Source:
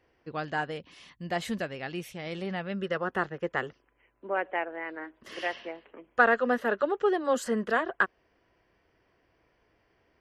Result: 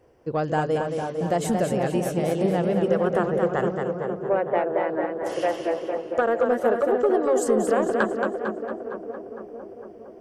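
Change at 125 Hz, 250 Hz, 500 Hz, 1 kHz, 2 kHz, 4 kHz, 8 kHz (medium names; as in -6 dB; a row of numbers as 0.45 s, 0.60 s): +12.0 dB, +9.0 dB, +9.5 dB, +5.0 dB, -2.5 dB, +0.5 dB, +10.0 dB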